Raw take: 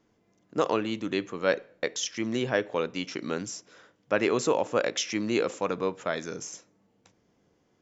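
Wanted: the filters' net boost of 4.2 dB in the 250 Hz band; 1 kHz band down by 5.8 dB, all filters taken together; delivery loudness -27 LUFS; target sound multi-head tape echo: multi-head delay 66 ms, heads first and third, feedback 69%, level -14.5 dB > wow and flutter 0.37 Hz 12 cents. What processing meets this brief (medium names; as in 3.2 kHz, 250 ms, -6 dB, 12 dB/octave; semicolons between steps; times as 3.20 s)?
peaking EQ 250 Hz +6 dB; peaking EQ 1 kHz -8 dB; multi-head delay 66 ms, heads first and third, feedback 69%, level -14.5 dB; wow and flutter 0.37 Hz 12 cents; trim +1 dB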